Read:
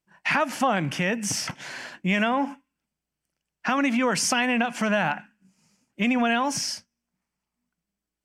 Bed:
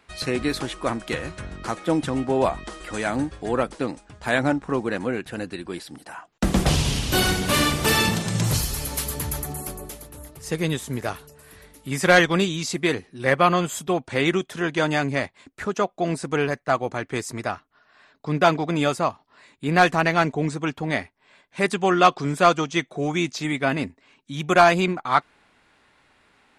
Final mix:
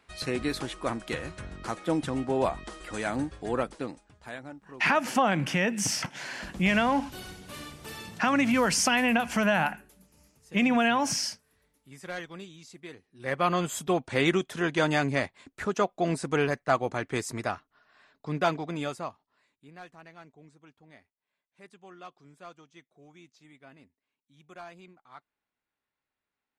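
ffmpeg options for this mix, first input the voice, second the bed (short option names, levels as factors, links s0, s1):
-filter_complex "[0:a]adelay=4550,volume=0.891[s0];[1:a]volume=4.73,afade=t=out:st=3.55:d=0.86:silence=0.149624,afade=t=in:st=13.06:d=0.75:silence=0.112202,afade=t=out:st=17.32:d=2.4:silence=0.0446684[s1];[s0][s1]amix=inputs=2:normalize=0"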